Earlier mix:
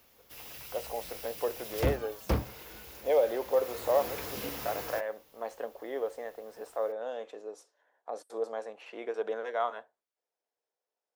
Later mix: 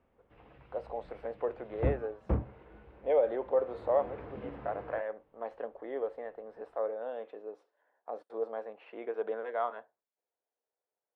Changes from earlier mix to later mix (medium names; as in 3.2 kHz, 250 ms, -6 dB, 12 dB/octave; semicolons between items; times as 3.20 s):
background: add tape spacing loss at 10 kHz 40 dB; master: add distance through air 460 m